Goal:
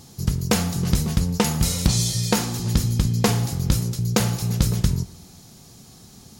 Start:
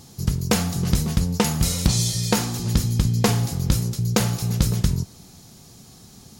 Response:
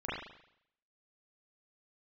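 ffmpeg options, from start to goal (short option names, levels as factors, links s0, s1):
-filter_complex "[0:a]asplit=2[s0][s1];[1:a]atrim=start_sample=2205,adelay=73[s2];[s1][s2]afir=irnorm=-1:irlink=0,volume=0.0531[s3];[s0][s3]amix=inputs=2:normalize=0"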